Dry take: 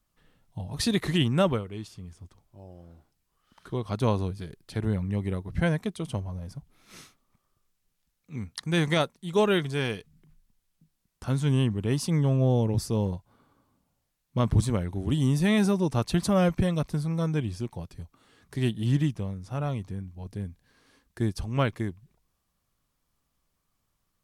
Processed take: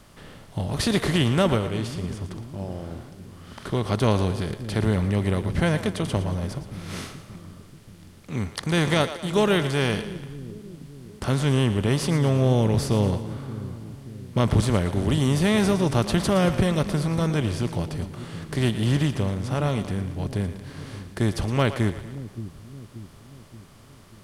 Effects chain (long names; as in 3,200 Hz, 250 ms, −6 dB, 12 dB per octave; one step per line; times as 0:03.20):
compressor on every frequency bin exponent 0.6
echo with a time of its own for lows and highs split 360 Hz, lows 579 ms, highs 115 ms, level −12 dB